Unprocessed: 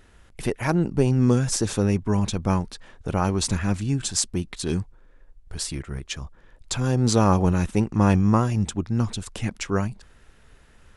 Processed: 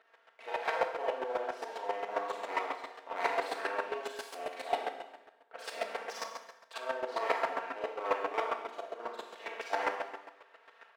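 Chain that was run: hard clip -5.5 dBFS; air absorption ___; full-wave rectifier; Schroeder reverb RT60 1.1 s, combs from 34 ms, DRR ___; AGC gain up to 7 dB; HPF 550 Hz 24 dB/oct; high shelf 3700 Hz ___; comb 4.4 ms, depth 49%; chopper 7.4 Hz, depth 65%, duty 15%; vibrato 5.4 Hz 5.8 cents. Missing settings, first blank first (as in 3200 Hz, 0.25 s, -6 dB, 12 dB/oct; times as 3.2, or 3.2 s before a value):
370 m, -6.5 dB, -6 dB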